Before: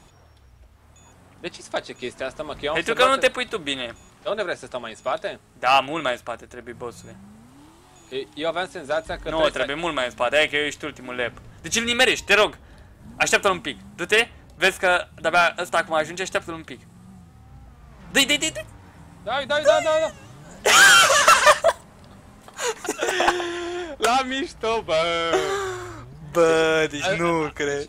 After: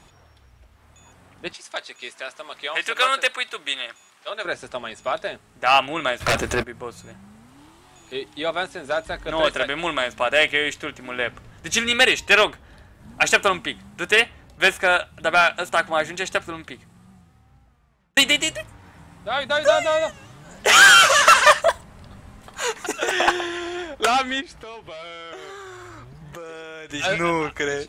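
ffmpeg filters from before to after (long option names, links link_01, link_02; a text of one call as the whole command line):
ffmpeg -i in.wav -filter_complex "[0:a]asettb=1/sr,asplit=3[link_01][link_02][link_03];[link_01]atrim=end=1.534[link_04];[link_02]atrim=start=1.53:end=4.45,asetpts=PTS-STARTPTS,afade=type=in:duration=0.004:curve=qsin,afade=type=out:start_time=2.916:duration=0.004:curve=qsin,highpass=frequency=1200:poles=1[link_05];[link_03]atrim=start=4.446[link_06];[link_04][link_05]acrossfade=duration=0.004:curve1=hsin:curve2=qsin[link_07];[link_07][link_06]acrossfade=duration=0.004:curve1=qsin:curve2=hsin,asplit=3[link_08][link_09][link_10];[link_08]afade=type=out:start_time=6.2:duration=0.02[link_11];[link_09]aeval=exprs='0.178*sin(PI/2*6.31*val(0)/0.178)':channel_layout=same,afade=type=in:start_time=6.2:duration=0.02,afade=type=out:start_time=6.62:duration=0.02[link_12];[link_10]afade=type=in:start_time=6.62:duration=0.02[link_13];[link_11][link_12][link_13]amix=inputs=3:normalize=0,asettb=1/sr,asplit=3[link_14][link_15][link_16];[link_14]atrim=end=21.714[link_17];[link_15]atrim=start=21.71:end=22.6,asetpts=PTS-STARTPTS,afade=type=in:duration=0.004:curve=qsin,afade=type=out:start_time=0.886:duration=0.004:curve=qsin,lowshelf=frequency=120:gain=10[link_18];[link_16]atrim=start=22.596[link_19];[link_17][link_18]acrossfade=duration=0.004:curve1=hsin:curve2=qsin[link_20];[link_20][link_19]acrossfade=duration=0.004:curve1=qsin:curve2=hsin,asplit=3[link_21][link_22][link_23];[link_21]afade=type=out:start_time=24.4:duration=0.02[link_24];[link_22]acompressor=threshold=-36dB:ratio=5:attack=3.2:release=140:knee=1:detection=peak,afade=type=in:start_time=24.4:duration=0.02,afade=type=out:start_time=26.89:duration=0.02[link_25];[link_23]afade=type=in:start_time=26.89:duration=0.02[link_26];[link_24][link_25][link_26]amix=inputs=3:normalize=0,asplit=2[link_27][link_28];[link_27]atrim=end=18.17,asetpts=PTS-STARTPTS,afade=type=out:start_time=16.59:duration=1.58[link_29];[link_28]atrim=start=18.17,asetpts=PTS-STARTPTS,afade=type=in:duration=0.004:curve=hsin[link_30];[link_29][link_30]concat=n=2:v=0:a=1,equalizer=frequency=2200:width_type=o:width=2.4:gain=4,volume=-1.5dB" out.wav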